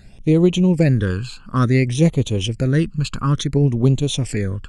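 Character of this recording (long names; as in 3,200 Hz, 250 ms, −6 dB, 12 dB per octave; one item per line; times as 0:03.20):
phaser sweep stages 12, 0.57 Hz, lowest notch 610–1,700 Hz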